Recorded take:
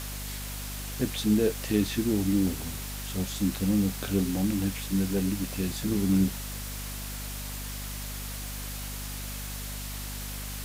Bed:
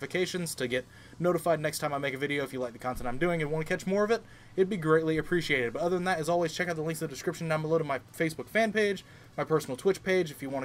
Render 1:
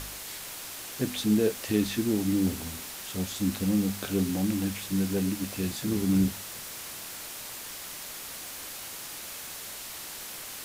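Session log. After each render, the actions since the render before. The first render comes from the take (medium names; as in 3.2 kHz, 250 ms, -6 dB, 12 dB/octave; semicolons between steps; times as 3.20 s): de-hum 50 Hz, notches 5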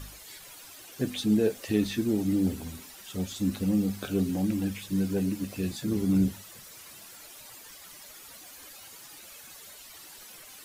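noise reduction 12 dB, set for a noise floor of -41 dBFS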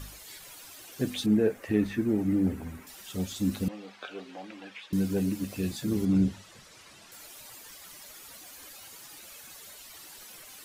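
1.26–2.87 s: resonant high shelf 2.7 kHz -10 dB, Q 1.5; 3.68–4.93 s: Butterworth band-pass 1.5 kHz, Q 0.52; 6.05–7.12 s: distance through air 69 m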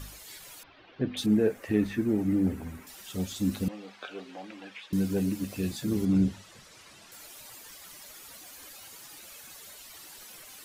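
0.63–1.17 s: Bessel low-pass 2.3 kHz, order 8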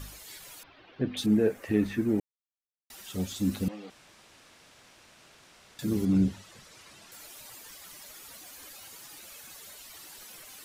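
2.20–2.90 s: mute; 3.90–5.79 s: room tone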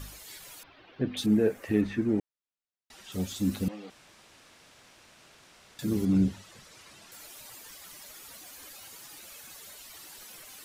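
1.81–3.12 s: distance through air 59 m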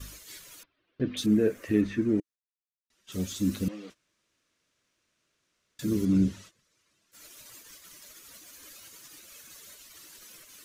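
gate -47 dBFS, range -20 dB; graphic EQ with 31 bands 315 Hz +3 dB, 800 Hz -12 dB, 6.3 kHz +4 dB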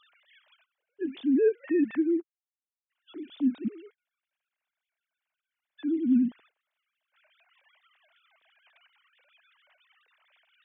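formants replaced by sine waves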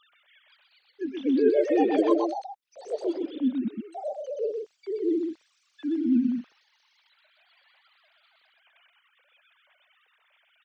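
ever faster or slower copies 497 ms, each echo +5 st, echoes 3; delay 125 ms -4.5 dB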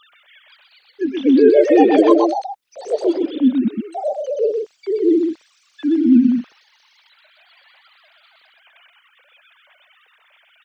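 trim +11 dB; peak limiter -1 dBFS, peak gain reduction 2.5 dB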